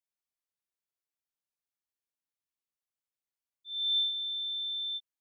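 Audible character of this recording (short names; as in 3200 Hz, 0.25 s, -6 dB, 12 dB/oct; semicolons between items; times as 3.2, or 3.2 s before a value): noise floor -94 dBFS; spectral tilt +2.0 dB/oct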